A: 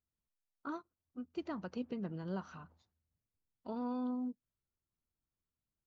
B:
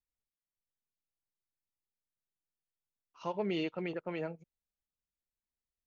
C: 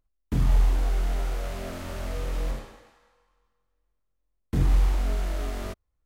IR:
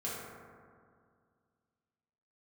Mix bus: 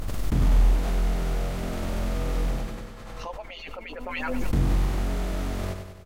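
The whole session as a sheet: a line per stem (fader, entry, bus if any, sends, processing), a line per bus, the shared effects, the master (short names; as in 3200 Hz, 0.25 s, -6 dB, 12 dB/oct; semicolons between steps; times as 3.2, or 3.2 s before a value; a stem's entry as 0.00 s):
-7.5 dB, 0.10 s, no send, no echo send, compressor, threshold -47 dBFS, peak gain reduction 12 dB
+2.0 dB, 0.00 s, no send, echo send -22 dB, median-filter separation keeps percussive
-2.5 dB, 0.00 s, no send, echo send -6.5 dB, per-bin compression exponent 0.6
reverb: off
echo: feedback echo 97 ms, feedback 57%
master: backwards sustainer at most 26 dB/s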